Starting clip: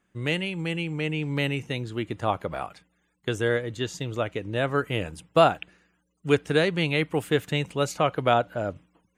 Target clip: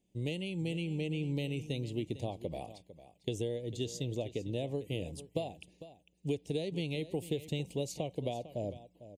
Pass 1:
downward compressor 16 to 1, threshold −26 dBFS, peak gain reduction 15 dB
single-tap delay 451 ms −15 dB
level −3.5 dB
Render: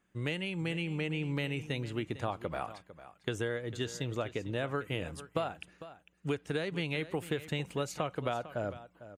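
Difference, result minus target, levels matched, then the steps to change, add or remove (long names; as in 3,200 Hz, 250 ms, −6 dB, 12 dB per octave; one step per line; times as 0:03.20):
1,000 Hz band +6.5 dB
add after downward compressor: Butterworth band-reject 1,400 Hz, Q 0.59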